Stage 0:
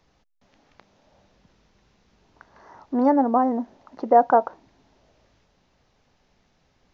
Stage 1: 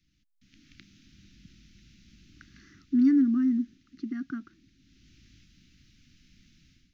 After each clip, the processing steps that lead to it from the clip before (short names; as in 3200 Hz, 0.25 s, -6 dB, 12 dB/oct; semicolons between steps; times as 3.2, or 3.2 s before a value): AGC gain up to 14 dB; inverse Chebyshev band-stop 460–1000 Hz, stop band 40 dB; band shelf 890 Hz -9 dB 2.3 oct; gain -7 dB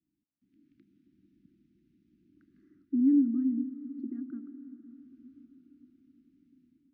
band-pass 320 Hz, Q 2.7; reverb RT60 5.5 s, pre-delay 0.108 s, DRR 10.5 dB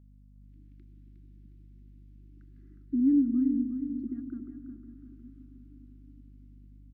hum 50 Hz, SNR 21 dB; on a send: feedback echo 0.361 s, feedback 35%, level -8 dB